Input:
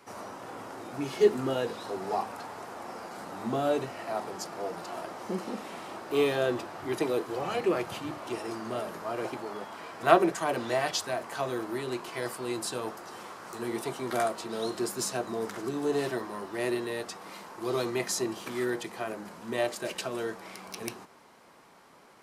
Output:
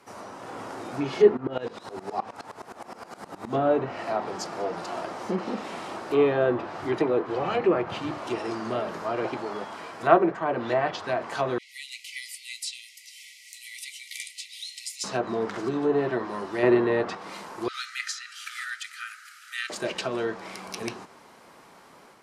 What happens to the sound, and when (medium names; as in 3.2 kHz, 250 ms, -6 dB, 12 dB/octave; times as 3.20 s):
1.37–3.55 s: sawtooth tremolo in dB swelling 9.6 Hz, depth 19 dB
11.58–15.04 s: brick-wall FIR high-pass 1.9 kHz
16.63–17.15 s: gain +6 dB
17.68–19.70 s: brick-wall FIR high-pass 1.2 kHz
whole clip: low-pass that closes with the level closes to 1.8 kHz, closed at -25.5 dBFS; level rider gain up to 5 dB